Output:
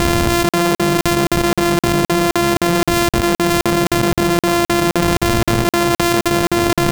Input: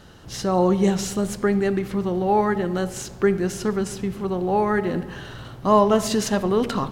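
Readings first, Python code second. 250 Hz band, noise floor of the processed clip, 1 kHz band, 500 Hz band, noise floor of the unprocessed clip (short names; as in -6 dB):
+7.0 dB, under -85 dBFS, +6.5 dB, +4.0 dB, -40 dBFS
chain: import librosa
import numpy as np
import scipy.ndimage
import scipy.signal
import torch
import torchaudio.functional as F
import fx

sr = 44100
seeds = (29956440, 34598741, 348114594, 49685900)

y = np.r_[np.sort(x[:len(x) // 128 * 128].reshape(-1, 128), axis=1).ravel(), x[len(x) // 128 * 128:]]
y = fx.buffer_crackle(y, sr, first_s=0.49, period_s=0.26, block=2048, kind='zero')
y = fx.env_flatten(y, sr, amount_pct=100)
y = y * 10.0 ** (-1.5 / 20.0)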